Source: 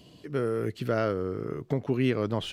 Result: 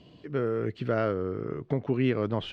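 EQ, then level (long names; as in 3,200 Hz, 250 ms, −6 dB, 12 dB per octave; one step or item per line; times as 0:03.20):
low-pass filter 3,300 Hz 12 dB per octave
0.0 dB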